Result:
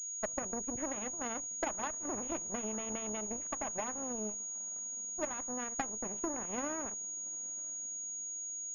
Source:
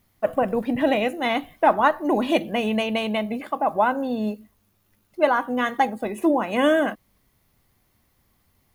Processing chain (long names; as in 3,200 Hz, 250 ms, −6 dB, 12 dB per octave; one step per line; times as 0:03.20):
spectral tilt −2 dB per octave
downward compressor 4 to 1, threshold −24 dBFS, peak gain reduction 11 dB
feedback delay with all-pass diffusion 972 ms, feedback 50%, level −16 dB
harmonic generator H 3 −11 dB, 7 −44 dB, 8 −27 dB, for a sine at −12.5 dBFS
switching amplifier with a slow clock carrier 6,700 Hz
level −5 dB